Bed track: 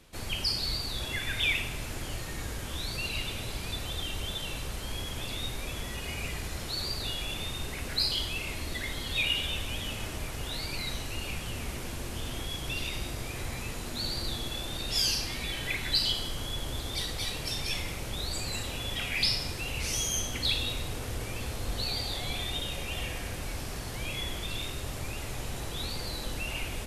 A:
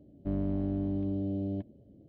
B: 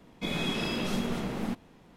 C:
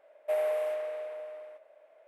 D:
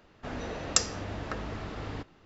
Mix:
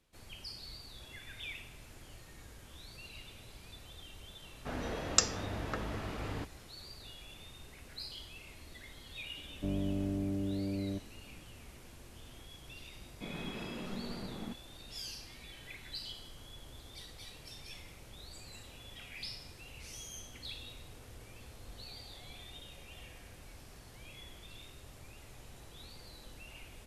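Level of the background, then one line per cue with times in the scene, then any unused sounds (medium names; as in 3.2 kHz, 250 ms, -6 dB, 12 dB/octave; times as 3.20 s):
bed track -16.5 dB
4.42 s: add D -2 dB
9.37 s: add A -3.5 dB + peaking EQ 460 Hz +5 dB 0.23 oct
12.99 s: add B -10.5 dB + distance through air 130 m
not used: C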